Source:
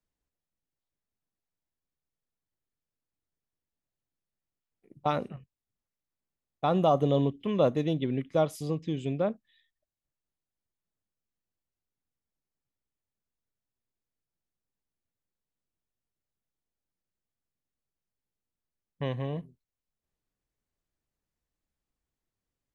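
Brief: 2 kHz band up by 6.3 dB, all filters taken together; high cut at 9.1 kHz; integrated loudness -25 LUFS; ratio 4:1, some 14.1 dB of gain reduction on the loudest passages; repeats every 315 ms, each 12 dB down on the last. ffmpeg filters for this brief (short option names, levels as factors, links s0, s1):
-af "lowpass=9100,equalizer=f=2000:t=o:g=8.5,acompressor=threshold=0.0158:ratio=4,aecho=1:1:315|630|945:0.251|0.0628|0.0157,volume=5.62"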